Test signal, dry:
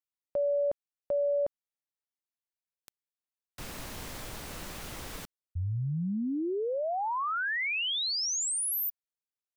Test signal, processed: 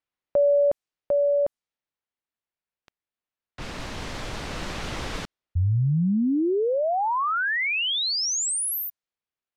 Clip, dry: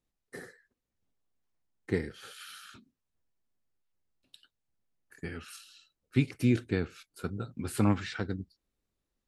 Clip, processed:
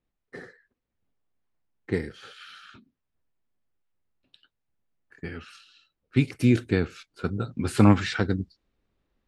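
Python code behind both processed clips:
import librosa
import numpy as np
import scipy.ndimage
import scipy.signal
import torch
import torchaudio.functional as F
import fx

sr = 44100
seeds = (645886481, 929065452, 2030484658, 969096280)

y = fx.env_lowpass(x, sr, base_hz=3000.0, full_db=-27.5)
y = fx.rider(y, sr, range_db=4, speed_s=2.0)
y = y * librosa.db_to_amplitude(7.0)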